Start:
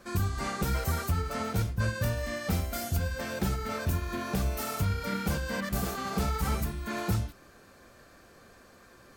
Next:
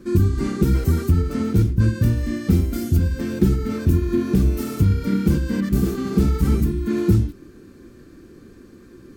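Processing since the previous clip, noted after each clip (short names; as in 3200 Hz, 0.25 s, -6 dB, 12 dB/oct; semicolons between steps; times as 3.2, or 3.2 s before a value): resonant low shelf 470 Hz +11.5 dB, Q 3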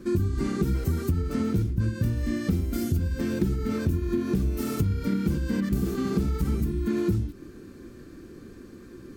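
compressor 4:1, threshold -23 dBFS, peak gain reduction 10.5 dB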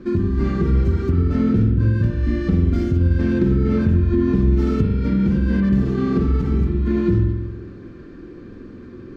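air absorption 200 m; spring tank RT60 1.2 s, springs 46 ms, chirp 35 ms, DRR 3 dB; gain +5 dB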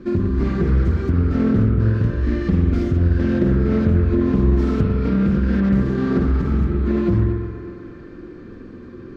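band-limited delay 0.12 s, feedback 78%, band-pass 920 Hz, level -5 dB; Doppler distortion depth 0.34 ms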